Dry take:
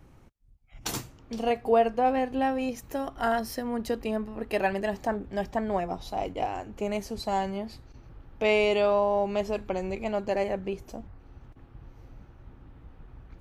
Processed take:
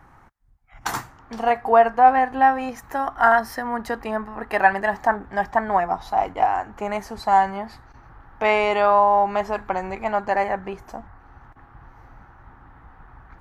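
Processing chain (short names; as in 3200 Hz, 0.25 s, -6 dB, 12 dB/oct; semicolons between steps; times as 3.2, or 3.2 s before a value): band shelf 1200 Hz +14 dB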